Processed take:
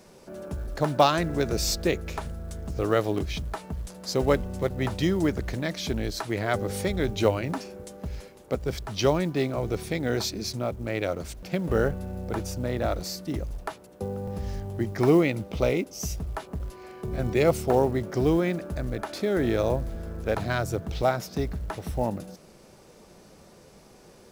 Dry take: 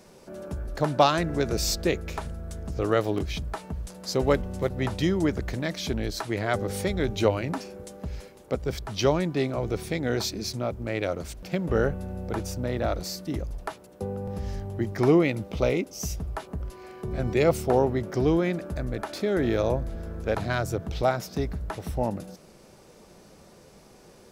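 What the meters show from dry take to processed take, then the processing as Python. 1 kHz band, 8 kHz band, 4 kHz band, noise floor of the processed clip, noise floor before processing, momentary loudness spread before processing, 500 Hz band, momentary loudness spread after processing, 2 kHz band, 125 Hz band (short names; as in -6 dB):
0.0 dB, 0.0 dB, 0.0 dB, -52 dBFS, -52 dBFS, 13 LU, 0.0 dB, 13 LU, 0.0 dB, 0.0 dB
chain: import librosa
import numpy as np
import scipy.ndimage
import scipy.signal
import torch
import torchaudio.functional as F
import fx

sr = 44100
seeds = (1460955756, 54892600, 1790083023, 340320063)

y = fx.quant_float(x, sr, bits=4)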